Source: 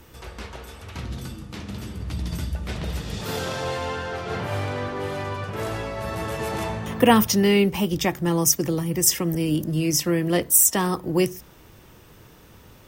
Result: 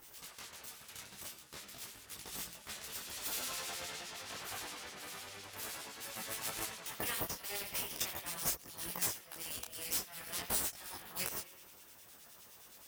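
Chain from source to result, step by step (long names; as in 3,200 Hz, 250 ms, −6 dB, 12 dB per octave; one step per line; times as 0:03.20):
first difference
spring reverb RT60 1.2 s, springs 51 ms, chirp 30 ms, DRR 7.5 dB
downward compressor 12 to 1, threshold −32 dBFS, peak gain reduction 23 dB
half-wave rectification
two-band tremolo in antiphase 9.7 Hz, depth 70%, crossover 1,900 Hz
gate on every frequency bin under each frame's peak −15 dB weak
micro pitch shift up and down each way 16 cents
level +13 dB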